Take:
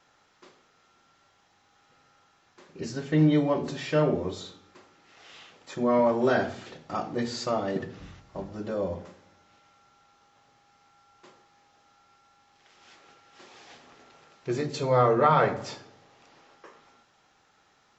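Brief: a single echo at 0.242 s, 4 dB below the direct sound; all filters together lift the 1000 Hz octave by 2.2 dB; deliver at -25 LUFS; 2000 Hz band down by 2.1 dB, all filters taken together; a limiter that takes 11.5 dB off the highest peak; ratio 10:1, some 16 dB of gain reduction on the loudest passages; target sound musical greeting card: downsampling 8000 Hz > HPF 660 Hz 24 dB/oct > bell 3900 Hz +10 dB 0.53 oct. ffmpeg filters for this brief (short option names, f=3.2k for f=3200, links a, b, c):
-af "equalizer=f=1k:t=o:g=5,equalizer=f=2k:t=o:g=-6,acompressor=threshold=-32dB:ratio=10,alimiter=level_in=7dB:limit=-24dB:level=0:latency=1,volume=-7dB,aecho=1:1:242:0.631,aresample=8000,aresample=44100,highpass=f=660:w=0.5412,highpass=f=660:w=1.3066,equalizer=f=3.9k:t=o:w=0.53:g=10,volume=21dB"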